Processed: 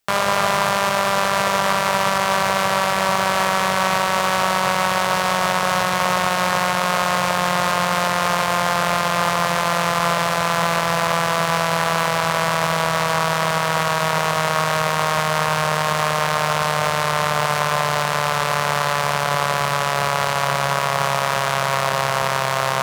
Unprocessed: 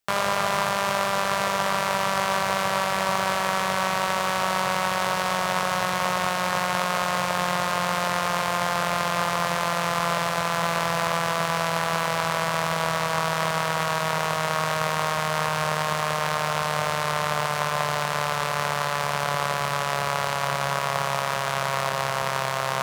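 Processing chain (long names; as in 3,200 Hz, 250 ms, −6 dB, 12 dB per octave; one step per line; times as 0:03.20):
brickwall limiter −11 dBFS, peak gain reduction 4.5 dB
level +7 dB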